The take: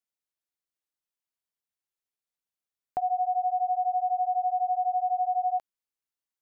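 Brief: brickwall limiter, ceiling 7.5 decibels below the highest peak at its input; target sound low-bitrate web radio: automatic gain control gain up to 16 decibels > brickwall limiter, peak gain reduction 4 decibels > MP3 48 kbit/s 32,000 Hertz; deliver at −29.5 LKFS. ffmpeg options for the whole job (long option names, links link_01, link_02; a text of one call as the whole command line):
ffmpeg -i in.wav -af "alimiter=level_in=4dB:limit=-24dB:level=0:latency=1,volume=-4dB,dynaudnorm=maxgain=16dB,alimiter=level_in=8dB:limit=-24dB:level=0:latency=1,volume=-8dB,volume=8dB" -ar 32000 -c:a libmp3lame -b:a 48k out.mp3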